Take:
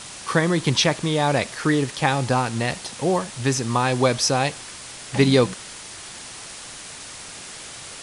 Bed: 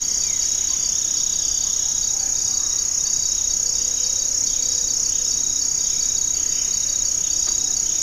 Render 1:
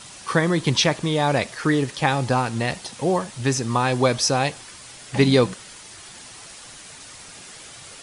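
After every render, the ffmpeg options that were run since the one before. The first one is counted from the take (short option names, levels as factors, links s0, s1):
-af "afftdn=nr=6:nf=-39"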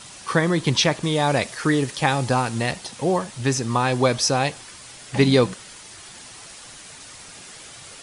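-filter_complex "[0:a]asettb=1/sr,asplit=3[s0][s1][s2];[s0]atrim=end=1.034[s3];[s1]atrim=start=1.03:end=2.71,asetpts=PTS-STARTPTS,afade=t=in:d=0.004:c=qsin,afade=t=out:st=1.676:d=0.004:c=qsin,highshelf=f=6700:g=6[s4];[s2]atrim=start=2.706[s5];[s3][s4]acrossfade=d=0.004:c1=hsin:c2=qsin[s6];[s6][s5]acrossfade=d=0.004:c1=qsin:c2=hsin"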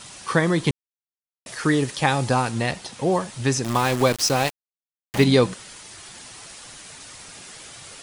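-filter_complex "[0:a]asettb=1/sr,asplit=3[s0][s1][s2];[s0]atrim=end=2.514[s3];[s1]atrim=start=2.51:end=3.12,asetpts=PTS-STARTPTS,afade=t=in:d=0.004:c=qsin,afade=t=out:st=0.606:d=0.004:c=qsin,highshelf=f=5900:g=-4.5[s4];[s2]atrim=start=3.116[s5];[s3][s4]acrossfade=d=0.004:c1=hsin:c2=qsin[s6];[s6][s5]acrossfade=d=0.004:c1=qsin:c2=hsin,asettb=1/sr,asplit=3[s7][s8][s9];[s7]atrim=end=3.644[s10];[s8]atrim=start=3.64:end=5.24,asetpts=PTS-STARTPTS,afade=t=in:d=0.004:c=qsin,afade=t=out:st=1.596:d=0.004:c=qsin,aeval=exprs='val(0)*gte(abs(val(0)),0.0596)':c=same[s11];[s9]atrim=start=5.236[s12];[s10][s11]acrossfade=d=0.004:c1=hsin:c2=qsin[s13];[s13][s12]acrossfade=d=0.004:c1=qsin:c2=hsin,asplit=3[s14][s15][s16];[s14]atrim=end=0.71,asetpts=PTS-STARTPTS,afade=t=out:st=0.706:d=0.004:c=hsin[s17];[s15]atrim=start=0.71:end=1.46,asetpts=PTS-STARTPTS,volume=0[s18];[s16]atrim=start=1.46,asetpts=PTS-STARTPTS,afade=t=in:d=0.004:c=hsin[s19];[s17][s18][s19]concat=n=3:v=0:a=1"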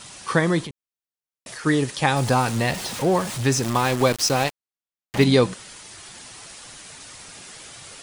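-filter_complex "[0:a]asplit=3[s0][s1][s2];[s0]afade=t=out:st=0.64:d=0.02[s3];[s1]acompressor=threshold=0.0251:ratio=8:attack=3.2:release=140:knee=1:detection=peak,afade=t=in:st=0.64:d=0.02,afade=t=out:st=1.65:d=0.02[s4];[s2]afade=t=in:st=1.65:d=0.02[s5];[s3][s4][s5]amix=inputs=3:normalize=0,asettb=1/sr,asplit=3[s6][s7][s8];[s6]atrim=end=2.164[s9];[s7]atrim=start=2.16:end=3.7,asetpts=PTS-STARTPTS,afade=t=in:d=0.004:c=qsin,afade=t=out:st=1.536:d=0.004:c=qsin,aeval=exprs='val(0)+0.5*0.0376*sgn(val(0))':c=same[s10];[s8]atrim=start=3.696[s11];[s9][s10]acrossfade=d=0.004:c1=hsin:c2=qsin[s12];[s12][s11]acrossfade=d=0.004:c1=qsin:c2=hsin,asettb=1/sr,asplit=3[s13][s14][s15];[s13]atrim=end=4.444[s16];[s14]atrim=start=4.44:end=5.21,asetpts=PTS-STARTPTS,afade=t=in:d=0.004:c=qsin,afade=t=out:st=0.766:d=0.004:c=qsin,highshelf=f=8600:g=-7[s17];[s15]atrim=start=5.206[s18];[s16][s17]acrossfade=d=0.004:c1=hsin:c2=qsin[s19];[s19][s18]acrossfade=d=0.004:c1=qsin:c2=hsin"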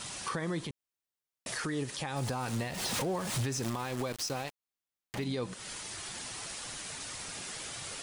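-af "acompressor=threshold=0.0447:ratio=10,alimiter=level_in=1.19:limit=0.0631:level=0:latency=1:release=105,volume=0.841"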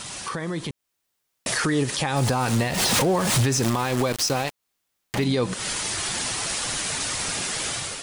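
-filter_complex "[0:a]asplit=2[s0][s1];[s1]alimiter=level_in=3.16:limit=0.0631:level=0:latency=1:release=197,volume=0.316,volume=1.41[s2];[s0][s2]amix=inputs=2:normalize=0,dynaudnorm=f=550:g=3:m=2.51"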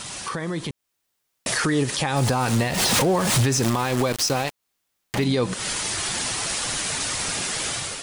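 -af "volume=1.12"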